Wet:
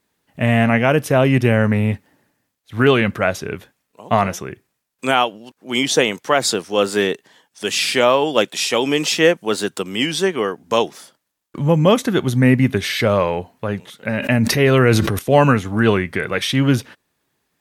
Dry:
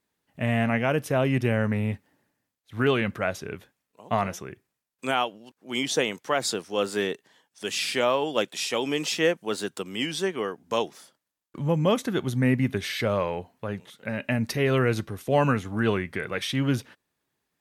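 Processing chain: 14.18–15.19 sustainer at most 33 dB/s; gain +9 dB

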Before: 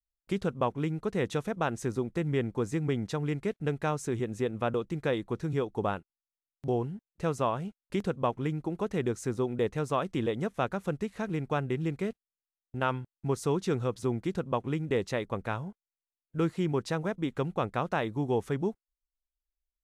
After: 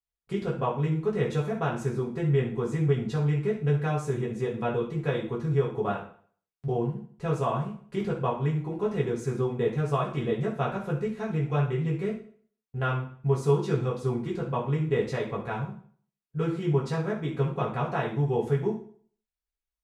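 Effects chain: high shelf 4600 Hz -6.5 dB; reverb RT60 0.50 s, pre-delay 3 ms, DRR -5.5 dB; gain -5 dB

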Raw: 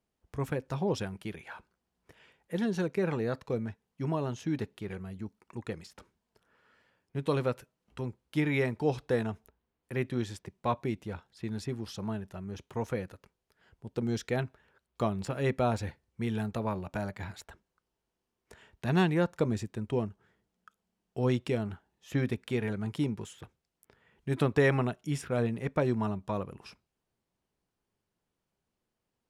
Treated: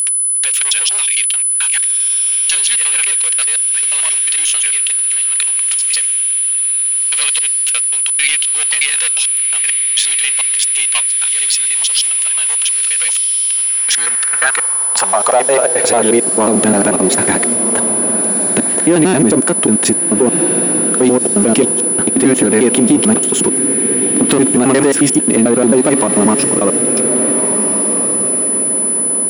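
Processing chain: slices in reverse order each 89 ms, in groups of 4; low shelf 61 Hz -5 dB; in parallel at +0.5 dB: compressor, threshold -38 dBFS, peak gain reduction 16.5 dB; on the sum: sample leveller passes 3; whine 10000 Hz -24 dBFS; on a send: diffused feedback echo 1.461 s, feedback 44%, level -12.5 dB; on the sum: high-pass sweep 2900 Hz -> 280 Hz, 13.48–16.54; maximiser +12.5 dB; gain -1 dB

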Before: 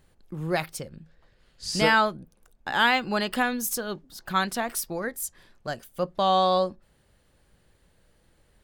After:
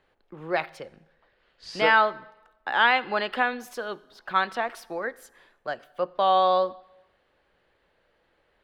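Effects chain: three-band isolator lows -16 dB, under 350 Hz, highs -24 dB, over 3700 Hz; on a send: reverb RT60 1.0 s, pre-delay 38 ms, DRR 21.5 dB; on the sum: gain +2 dB

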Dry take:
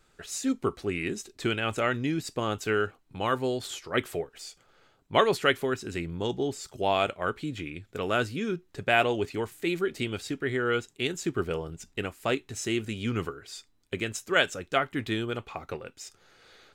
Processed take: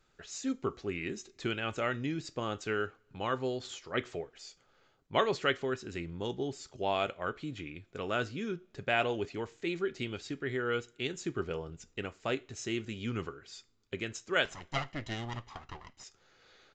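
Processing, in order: 14.45–16.04 minimum comb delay 1 ms; two-slope reverb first 0.34 s, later 2.4 s, from -27 dB, DRR 16.5 dB; downsampling 16000 Hz; gain -6 dB

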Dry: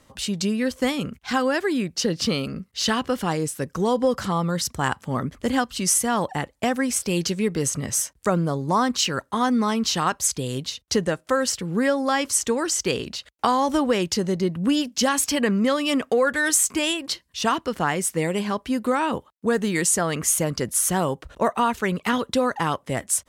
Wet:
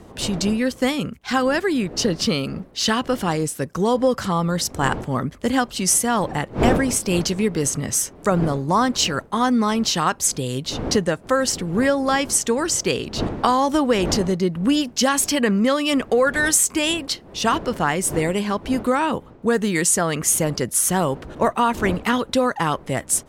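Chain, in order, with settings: wind noise 420 Hz -36 dBFS; gain +2.5 dB

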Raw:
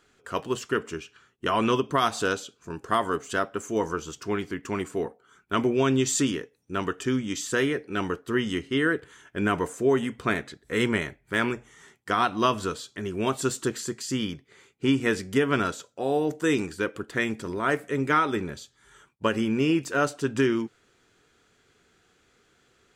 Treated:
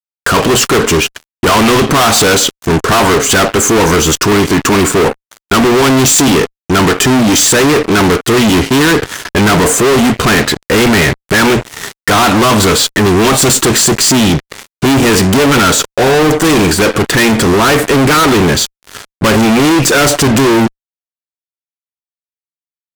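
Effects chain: fuzz box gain 45 dB, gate -50 dBFS; gain +6 dB

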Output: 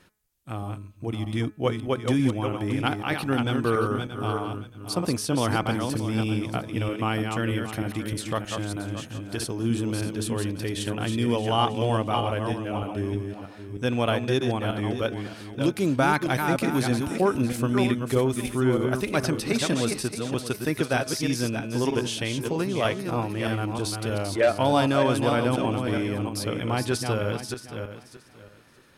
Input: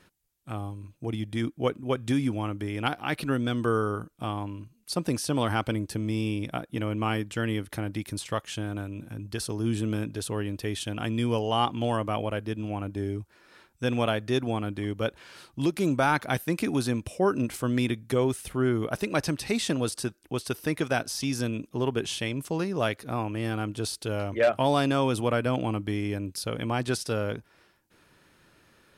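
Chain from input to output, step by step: regenerating reverse delay 0.313 s, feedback 43%, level -5 dB; de-hum 213.1 Hz, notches 11; gain +1.5 dB

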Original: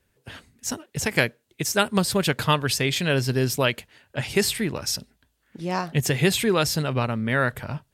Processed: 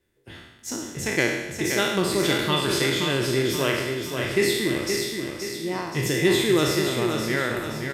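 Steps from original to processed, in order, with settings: spectral trails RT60 1.04 s; small resonant body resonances 340/2000/3500 Hz, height 12 dB, ringing for 40 ms; on a send: feedback echo 0.525 s, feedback 48%, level -6 dB; on the sum: gain -7.5 dB

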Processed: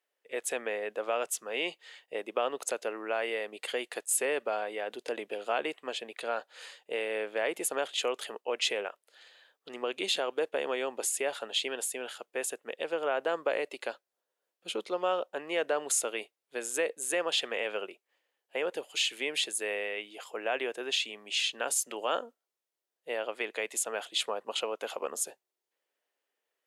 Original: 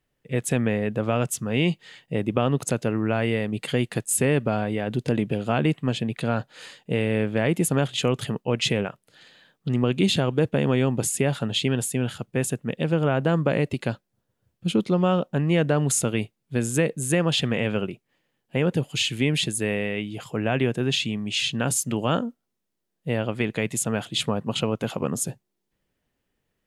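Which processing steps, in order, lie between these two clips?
HPF 440 Hz 24 dB/oct; gain -4.5 dB

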